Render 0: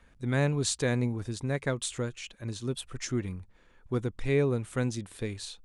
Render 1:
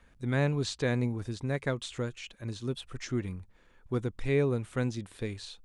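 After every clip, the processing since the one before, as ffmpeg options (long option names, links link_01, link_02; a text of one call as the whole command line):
ffmpeg -i in.wav -filter_complex "[0:a]acrossover=split=5500[link_01][link_02];[link_02]acompressor=threshold=-54dB:ratio=4:attack=1:release=60[link_03];[link_01][link_03]amix=inputs=2:normalize=0,volume=-1dB" out.wav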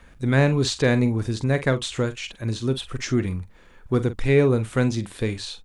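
ffmpeg -i in.wav -filter_complex "[0:a]asplit=2[link_01][link_02];[link_02]asoftclip=type=tanh:threshold=-31dB,volume=-11.5dB[link_03];[link_01][link_03]amix=inputs=2:normalize=0,asplit=2[link_04][link_05];[link_05]adelay=45,volume=-12.5dB[link_06];[link_04][link_06]amix=inputs=2:normalize=0,volume=8.5dB" out.wav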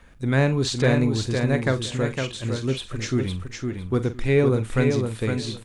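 ffmpeg -i in.wav -af "aecho=1:1:509|1018|1527:0.562|0.101|0.0182,volume=-1.5dB" out.wav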